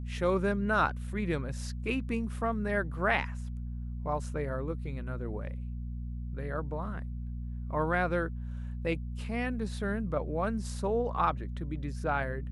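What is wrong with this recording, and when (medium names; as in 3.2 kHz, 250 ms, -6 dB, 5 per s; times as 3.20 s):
hum 60 Hz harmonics 4 -37 dBFS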